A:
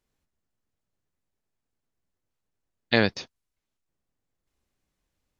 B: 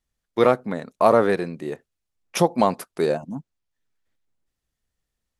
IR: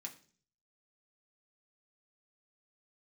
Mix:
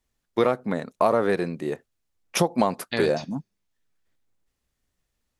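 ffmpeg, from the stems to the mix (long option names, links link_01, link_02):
-filter_complex "[0:a]alimiter=limit=-9.5dB:level=0:latency=1,volume=-5dB,asplit=2[link_01][link_02];[link_02]volume=-4dB[link_03];[1:a]volume=1.5dB[link_04];[2:a]atrim=start_sample=2205[link_05];[link_03][link_05]afir=irnorm=-1:irlink=0[link_06];[link_01][link_04][link_06]amix=inputs=3:normalize=0,acompressor=threshold=-17dB:ratio=4"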